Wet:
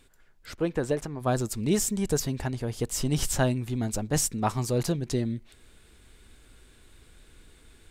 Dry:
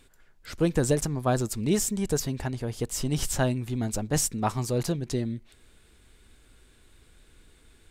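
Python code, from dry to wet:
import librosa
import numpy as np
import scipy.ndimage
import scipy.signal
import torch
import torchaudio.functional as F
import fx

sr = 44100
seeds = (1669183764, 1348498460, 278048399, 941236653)

y = fx.bass_treble(x, sr, bass_db=-7, treble_db=-12, at=(0.53, 1.2), fade=0.02)
y = fx.rider(y, sr, range_db=10, speed_s=2.0)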